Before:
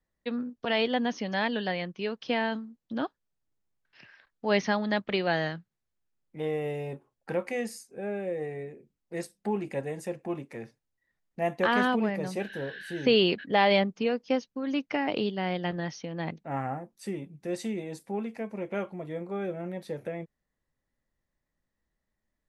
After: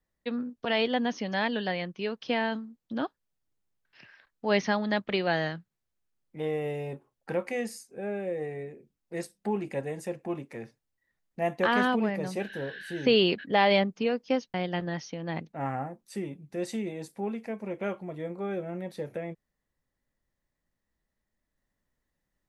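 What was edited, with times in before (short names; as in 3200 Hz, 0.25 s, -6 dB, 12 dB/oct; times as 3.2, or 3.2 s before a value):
14.54–15.45 cut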